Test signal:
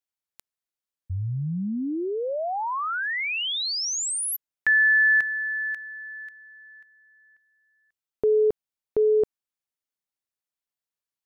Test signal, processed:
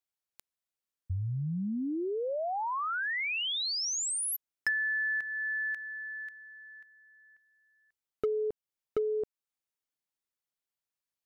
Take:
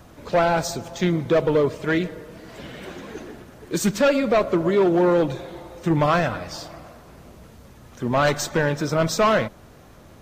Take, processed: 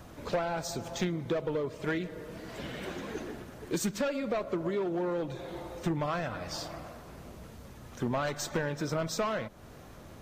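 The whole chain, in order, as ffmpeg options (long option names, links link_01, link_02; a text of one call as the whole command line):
ffmpeg -i in.wav -af "acompressor=threshold=-28dB:ratio=10:attack=54:release=542:knee=6:detection=peak,asoftclip=type=hard:threshold=-21.5dB,volume=-2dB" out.wav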